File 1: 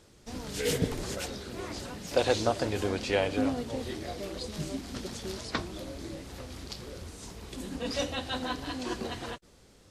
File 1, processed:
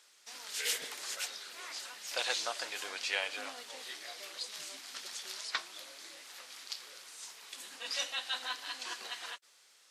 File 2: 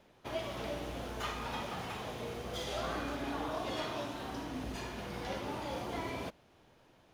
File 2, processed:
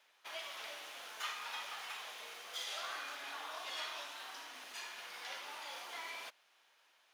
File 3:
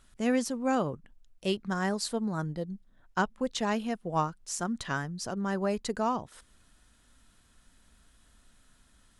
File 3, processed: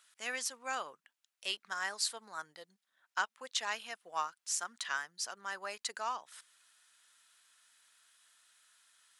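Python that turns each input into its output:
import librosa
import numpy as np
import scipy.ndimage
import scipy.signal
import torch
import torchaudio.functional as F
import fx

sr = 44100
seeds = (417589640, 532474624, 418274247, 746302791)

y = scipy.signal.sosfilt(scipy.signal.butter(2, 1400.0, 'highpass', fs=sr, output='sos'), x)
y = y * 10.0 ** (1.0 / 20.0)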